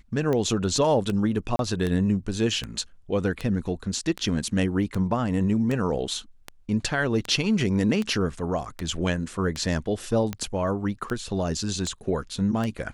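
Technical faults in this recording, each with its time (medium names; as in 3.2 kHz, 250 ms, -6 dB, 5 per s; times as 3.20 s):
tick 78 rpm -15 dBFS
1.56–1.59 s: dropout 32 ms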